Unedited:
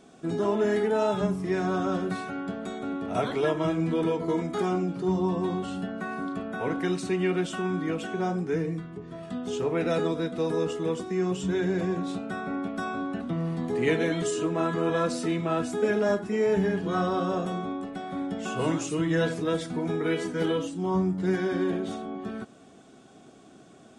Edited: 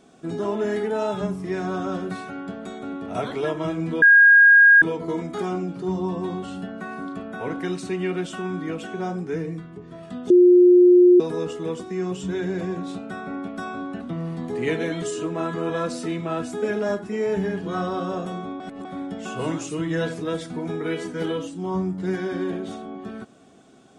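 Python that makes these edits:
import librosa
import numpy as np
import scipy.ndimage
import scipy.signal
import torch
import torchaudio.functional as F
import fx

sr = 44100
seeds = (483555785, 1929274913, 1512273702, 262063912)

y = fx.edit(x, sr, fx.insert_tone(at_s=4.02, length_s=0.8, hz=1630.0, db=-8.5),
    fx.bleep(start_s=9.5, length_s=0.9, hz=357.0, db=-9.0),
    fx.reverse_span(start_s=17.8, length_s=0.25), tone=tone)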